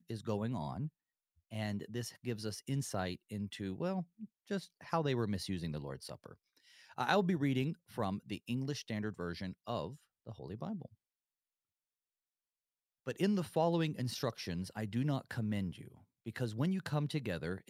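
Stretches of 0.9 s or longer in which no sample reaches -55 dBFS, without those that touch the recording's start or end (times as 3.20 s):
10.93–13.06 s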